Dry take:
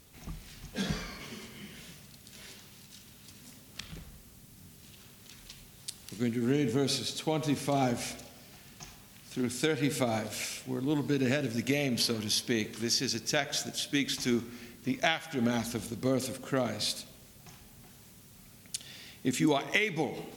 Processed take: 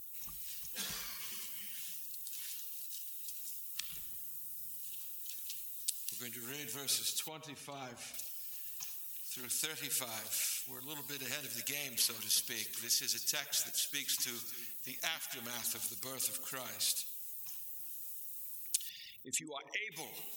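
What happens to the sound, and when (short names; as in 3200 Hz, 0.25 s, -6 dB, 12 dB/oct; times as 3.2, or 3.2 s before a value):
3.85–4.91 reverb throw, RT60 2.4 s, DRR 4.5 dB
7.28–8.14 LPF 1300 Hz 6 dB/oct
10.85–16.68 echo 0.263 s -17 dB
18.89–19.92 formant sharpening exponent 2
whole clip: per-bin expansion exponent 1.5; pre-emphasis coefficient 0.97; spectral compressor 2:1; gain +7.5 dB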